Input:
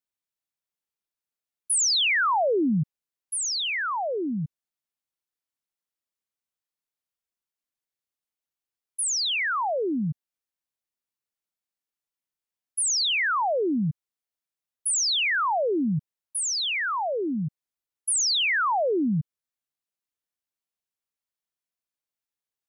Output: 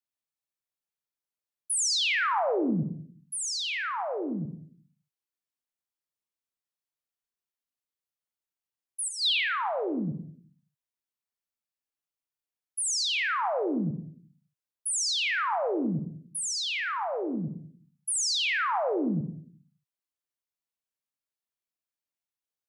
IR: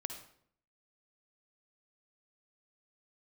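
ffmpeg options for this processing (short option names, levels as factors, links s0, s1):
-filter_complex "[0:a]asettb=1/sr,asplit=3[s0][s1][s2];[s0]atrim=end=9.084[s3];[s1]atrim=start=9.08:end=10.06,asetpts=PTS-STARTPTS,afade=t=in:d=0.004:c=qsin,afade=t=out:st=0.976:d=0.004:c=qsin,highshelf=f=5100:t=q:w=3:g=-10.5[s4];[s2]atrim=start=10.056[s5];[s3][s4]acrossfade=d=0.004:c1=hsin:c2=qsin[s6];[s6][s5]acrossfade=d=0.004:c1=qsin:c2=hsin[s7];[1:a]atrim=start_sample=2205[s8];[s7][s8]afir=irnorm=-1:irlink=0,volume=0.708"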